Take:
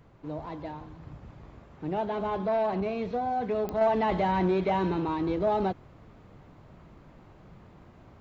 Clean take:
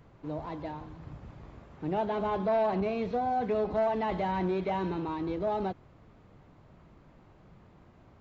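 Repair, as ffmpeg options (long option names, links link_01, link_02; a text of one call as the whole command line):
ffmpeg -i in.wav -af "adeclick=threshold=4,asetnsamples=nb_out_samples=441:pad=0,asendcmd='3.81 volume volume -4.5dB',volume=0dB" out.wav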